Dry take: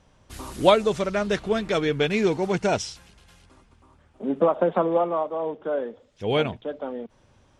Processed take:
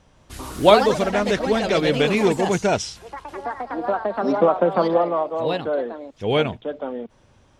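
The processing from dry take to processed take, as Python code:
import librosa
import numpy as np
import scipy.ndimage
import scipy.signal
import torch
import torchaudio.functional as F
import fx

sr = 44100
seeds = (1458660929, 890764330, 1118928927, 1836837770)

y = fx.echo_pitch(x, sr, ms=168, semitones=3, count=3, db_per_echo=-6.0)
y = F.gain(torch.from_numpy(y), 3.0).numpy()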